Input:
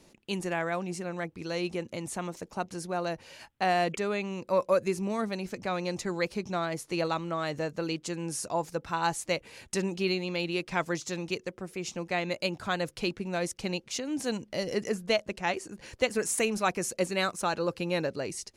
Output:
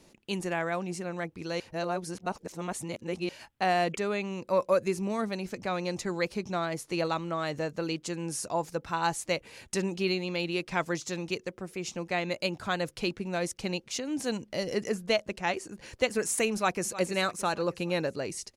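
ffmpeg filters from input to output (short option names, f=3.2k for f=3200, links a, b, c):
-filter_complex "[0:a]asplit=2[a][b];[b]afade=t=in:st=16.54:d=0.01,afade=t=out:st=16.99:d=0.01,aecho=0:1:310|620|930|1240|1550:0.188365|0.103601|0.0569804|0.0313392|0.0172366[c];[a][c]amix=inputs=2:normalize=0,asplit=3[d][e][f];[d]atrim=end=1.602[g];[e]atrim=start=1.598:end=3.292,asetpts=PTS-STARTPTS,areverse[h];[f]atrim=start=3.288[i];[g][h]acrossfade=d=0.004:c1=hsin:c2=hsin[j];[j][i]acrossfade=d=0.004:c1=hsin:c2=hsin"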